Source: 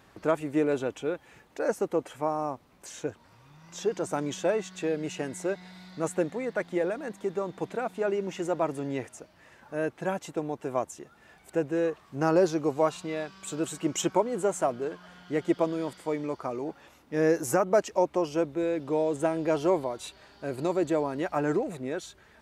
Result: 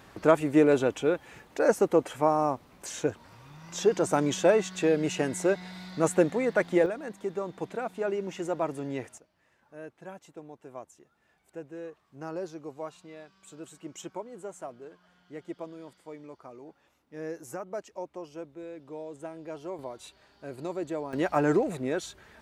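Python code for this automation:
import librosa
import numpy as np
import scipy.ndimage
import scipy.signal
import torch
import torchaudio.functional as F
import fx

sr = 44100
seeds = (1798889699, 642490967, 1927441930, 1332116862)

y = fx.gain(x, sr, db=fx.steps((0.0, 5.0), (6.86, -2.0), (9.18, -13.5), (19.79, -7.0), (21.13, 3.0)))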